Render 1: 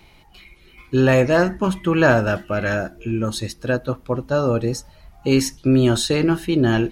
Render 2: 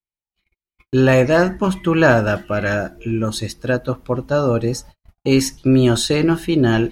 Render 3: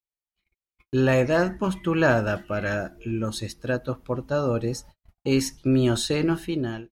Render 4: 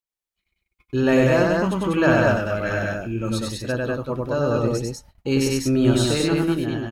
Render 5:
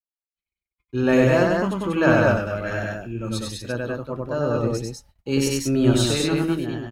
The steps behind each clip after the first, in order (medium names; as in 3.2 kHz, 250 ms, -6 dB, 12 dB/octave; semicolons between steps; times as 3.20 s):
gate -40 dBFS, range -52 dB; trim +2 dB
fade out at the end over 0.53 s; trim -7 dB
loudspeakers at several distances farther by 33 m -2 dB, 67 m -2 dB
vibrato 0.76 Hz 44 cents; three bands expanded up and down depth 40%; trim -1 dB